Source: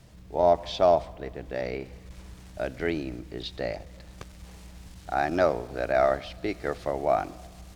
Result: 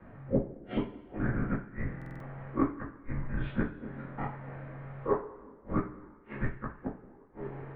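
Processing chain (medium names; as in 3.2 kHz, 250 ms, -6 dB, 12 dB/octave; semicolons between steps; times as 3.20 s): every event in the spectrogram widened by 60 ms; peaking EQ 410 Hz -14 dB 0.24 oct; inverted gate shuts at -17 dBFS, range -42 dB; two-slope reverb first 0.29 s, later 1.6 s, from -19 dB, DRR -6.5 dB; mistuned SSB -320 Hz 210–2100 Hz; buffer glitch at 1.97 s, samples 2048, times 4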